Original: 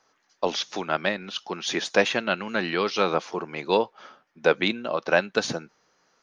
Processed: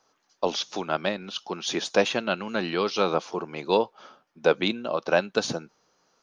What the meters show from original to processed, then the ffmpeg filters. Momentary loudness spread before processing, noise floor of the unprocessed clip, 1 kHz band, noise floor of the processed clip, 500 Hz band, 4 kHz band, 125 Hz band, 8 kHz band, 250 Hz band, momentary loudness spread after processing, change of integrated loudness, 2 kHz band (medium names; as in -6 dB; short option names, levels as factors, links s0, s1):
9 LU, -69 dBFS, -1.0 dB, -71 dBFS, 0.0 dB, -1.0 dB, 0.0 dB, no reading, 0.0 dB, 9 LU, -1.0 dB, -4.5 dB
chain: -af "equalizer=f=1900:w=2:g=-7"